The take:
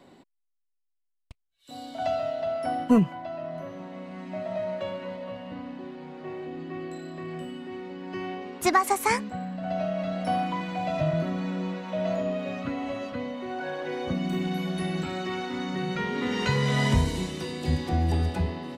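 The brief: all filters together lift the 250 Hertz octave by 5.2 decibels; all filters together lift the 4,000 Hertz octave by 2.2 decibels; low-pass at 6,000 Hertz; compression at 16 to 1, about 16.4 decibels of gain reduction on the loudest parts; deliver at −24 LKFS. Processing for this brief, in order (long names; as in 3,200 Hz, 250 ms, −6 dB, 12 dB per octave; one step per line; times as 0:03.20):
low-pass filter 6,000 Hz
parametric band 250 Hz +6.5 dB
parametric band 4,000 Hz +3.5 dB
downward compressor 16 to 1, threshold −25 dBFS
level +7 dB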